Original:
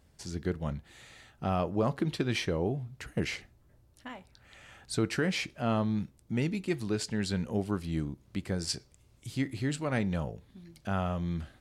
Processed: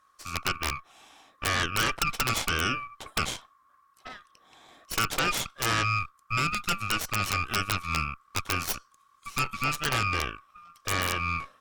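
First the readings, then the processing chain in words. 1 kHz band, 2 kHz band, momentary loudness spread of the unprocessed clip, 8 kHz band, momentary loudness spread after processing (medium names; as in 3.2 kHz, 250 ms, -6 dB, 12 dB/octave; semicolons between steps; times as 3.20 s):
+9.5 dB, +11.0 dB, 16 LU, +10.0 dB, 10 LU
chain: split-band scrambler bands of 1 kHz; Chebyshev shaper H 5 -35 dB, 8 -8 dB, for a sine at -14.5 dBFS; integer overflow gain 14.5 dB; trim -2 dB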